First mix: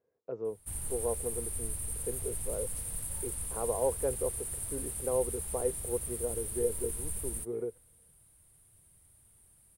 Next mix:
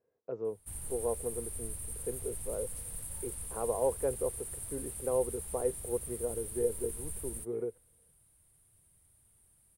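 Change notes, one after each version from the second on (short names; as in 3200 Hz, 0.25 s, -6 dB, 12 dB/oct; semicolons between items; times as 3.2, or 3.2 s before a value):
background -4.0 dB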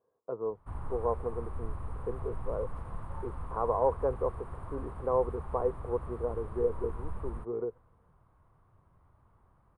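background +7.5 dB; master: add synth low-pass 1100 Hz, resonance Q 4.4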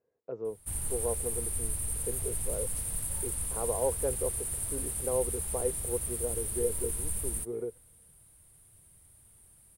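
master: remove synth low-pass 1100 Hz, resonance Q 4.4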